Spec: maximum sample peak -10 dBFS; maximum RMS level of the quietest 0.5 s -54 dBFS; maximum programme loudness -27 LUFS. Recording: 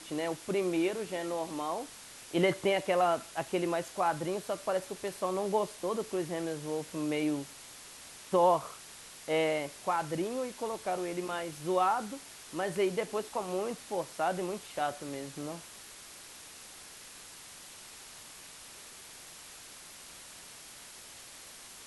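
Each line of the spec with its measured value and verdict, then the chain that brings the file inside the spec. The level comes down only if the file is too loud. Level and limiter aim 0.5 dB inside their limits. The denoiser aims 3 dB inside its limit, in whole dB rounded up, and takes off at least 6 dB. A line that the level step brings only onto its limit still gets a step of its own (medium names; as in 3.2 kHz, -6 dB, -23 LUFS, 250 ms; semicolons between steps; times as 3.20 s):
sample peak -15.0 dBFS: pass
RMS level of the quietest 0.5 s -50 dBFS: fail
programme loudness -33.0 LUFS: pass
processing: noise reduction 7 dB, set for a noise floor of -50 dBFS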